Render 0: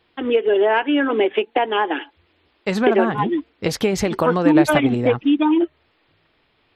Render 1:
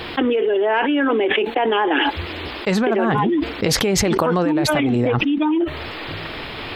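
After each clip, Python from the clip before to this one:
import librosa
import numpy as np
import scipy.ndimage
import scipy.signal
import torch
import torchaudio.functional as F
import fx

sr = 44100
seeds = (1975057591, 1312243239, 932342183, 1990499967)

y = fx.env_flatten(x, sr, amount_pct=100)
y = F.gain(torch.from_numpy(y), -7.5).numpy()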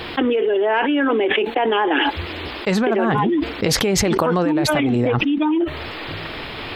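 y = x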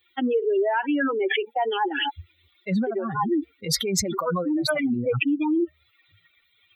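y = fx.bin_expand(x, sr, power=3.0)
y = scipy.signal.sosfilt(scipy.signal.butter(2, 110.0, 'highpass', fs=sr, output='sos'), y)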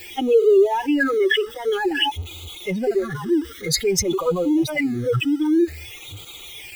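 y = x + 0.5 * 10.0 ** (-35.0 / 20.0) * np.sign(x)
y = fx.phaser_stages(y, sr, stages=12, low_hz=740.0, high_hz=1800.0, hz=0.52, feedback_pct=5)
y = y + 0.64 * np.pad(y, (int(2.4 * sr / 1000.0), 0))[:len(y)]
y = F.gain(torch.from_numpy(y), 4.0).numpy()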